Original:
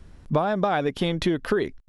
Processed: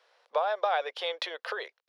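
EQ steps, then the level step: Chebyshev high-pass 490 Hz, order 5; resonant high shelf 6100 Hz -9.5 dB, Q 1.5; -3.0 dB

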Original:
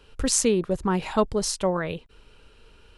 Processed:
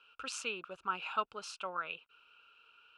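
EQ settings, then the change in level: double band-pass 1900 Hz, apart 0.93 oct; +1.5 dB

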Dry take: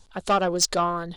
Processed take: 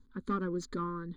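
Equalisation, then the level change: running mean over 16 samples; Butterworth band-stop 690 Hz, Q 0.98; bell 250 Hz +15 dB 0.34 oct; -7.0 dB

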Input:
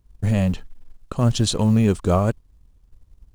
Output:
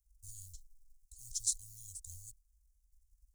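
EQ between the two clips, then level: inverse Chebyshev band-stop 150–2600 Hz, stop band 50 dB; passive tone stack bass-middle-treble 5-5-5; low shelf 85 Hz -8 dB; +3.0 dB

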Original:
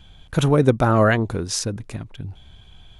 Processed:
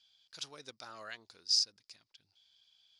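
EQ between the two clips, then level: band-pass 4900 Hz, Q 9.3; +4.0 dB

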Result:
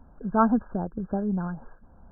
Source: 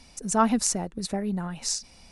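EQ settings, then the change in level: brick-wall FIR low-pass 1700 Hz; low shelf 170 Hz +4.5 dB; 0.0 dB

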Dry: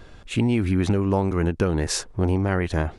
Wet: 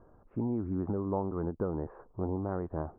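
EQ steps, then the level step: steep low-pass 1200 Hz 36 dB/oct; low shelf 130 Hz -9 dB; -8.5 dB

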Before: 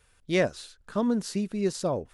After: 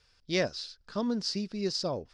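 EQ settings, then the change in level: synth low-pass 5000 Hz, resonance Q 6.3; -5.0 dB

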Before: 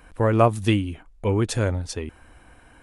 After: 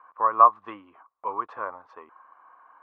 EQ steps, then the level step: HPF 810 Hz 12 dB/oct; synth low-pass 1100 Hz, resonance Q 12; air absorption 110 m; -5.0 dB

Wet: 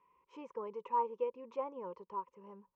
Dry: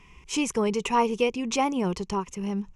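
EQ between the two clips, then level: double band-pass 720 Hz, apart 0.86 oct; air absorption 110 m; -6.5 dB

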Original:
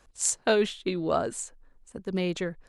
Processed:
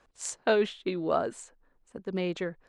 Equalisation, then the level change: low shelf 130 Hz -11.5 dB; high shelf 4100 Hz -8 dB; high shelf 9100 Hz -10.5 dB; 0.0 dB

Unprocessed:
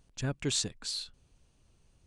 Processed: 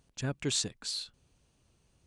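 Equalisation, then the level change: HPF 74 Hz 6 dB/oct; 0.0 dB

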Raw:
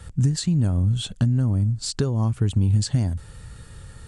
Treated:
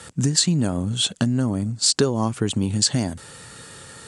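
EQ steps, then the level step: HPF 250 Hz 12 dB/oct; LPF 8700 Hz 12 dB/oct; high shelf 6200 Hz +8.5 dB; +8.0 dB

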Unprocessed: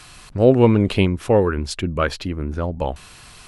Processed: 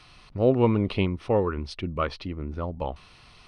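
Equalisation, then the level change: notch 1600 Hz, Q 6.1; dynamic EQ 1100 Hz, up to +5 dB, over -40 dBFS, Q 2.9; polynomial smoothing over 15 samples; -7.5 dB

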